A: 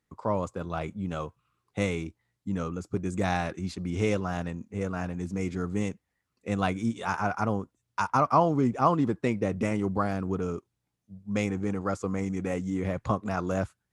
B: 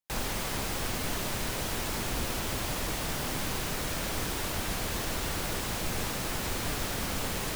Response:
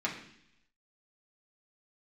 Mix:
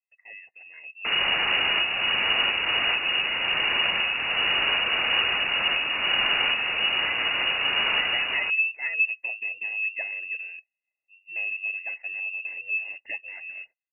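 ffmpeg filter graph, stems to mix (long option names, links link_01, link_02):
-filter_complex "[0:a]firequalizer=gain_entry='entry(350,0);entry(550,-14);entry(780,-1)':delay=0.05:min_phase=1,acrusher=samples=13:mix=1:aa=0.000001:lfo=1:lforange=7.8:lforate=1.6,asplit=3[link_01][link_02][link_03];[link_01]bandpass=frequency=300:width_type=q:width=8,volume=0dB[link_04];[link_02]bandpass=frequency=870:width_type=q:width=8,volume=-6dB[link_05];[link_03]bandpass=frequency=2240:width_type=q:width=8,volume=-9dB[link_06];[link_04][link_05][link_06]amix=inputs=3:normalize=0,volume=-3.5dB,asplit=2[link_07][link_08];[1:a]adelay=950,volume=0dB[link_09];[link_08]apad=whole_len=374918[link_10];[link_09][link_10]sidechaincompress=threshold=-44dB:ratio=4:attack=32:release=587[link_11];[link_07][link_11]amix=inputs=2:normalize=0,dynaudnorm=framelen=160:gausssize=9:maxgain=10.5dB,lowpass=frequency=2500:width_type=q:width=0.5098,lowpass=frequency=2500:width_type=q:width=0.6013,lowpass=frequency=2500:width_type=q:width=0.9,lowpass=frequency=2500:width_type=q:width=2.563,afreqshift=-2900"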